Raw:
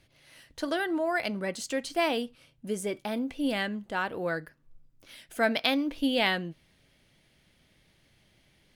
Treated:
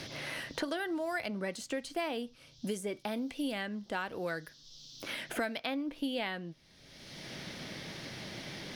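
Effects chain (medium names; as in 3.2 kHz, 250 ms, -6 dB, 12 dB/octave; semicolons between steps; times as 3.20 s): band noise 3.2–5.9 kHz -67 dBFS; three bands compressed up and down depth 100%; trim -6.5 dB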